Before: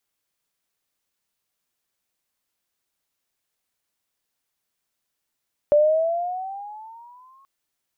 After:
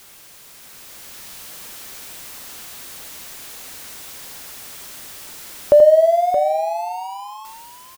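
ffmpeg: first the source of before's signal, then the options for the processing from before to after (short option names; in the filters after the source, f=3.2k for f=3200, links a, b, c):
-f lavfi -i "aevalsrc='pow(10,(-11.5-39.5*t/1.73)/20)*sin(2*PI*583*1.73/(11*log(2)/12)*(exp(11*log(2)/12*t/1.73)-1))':d=1.73:s=44100"
-filter_complex "[0:a]aeval=exprs='val(0)+0.5*0.0112*sgn(val(0))':c=same,dynaudnorm=f=110:g=17:m=7.5dB,asplit=2[a][b];[b]aecho=0:1:82|623:0.422|0.335[c];[a][c]amix=inputs=2:normalize=0"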